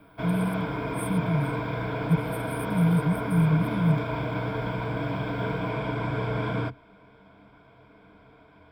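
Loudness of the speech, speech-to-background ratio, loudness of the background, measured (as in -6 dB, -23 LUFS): -27.0 LUFS, 3.5 dB, -30.5 LUFS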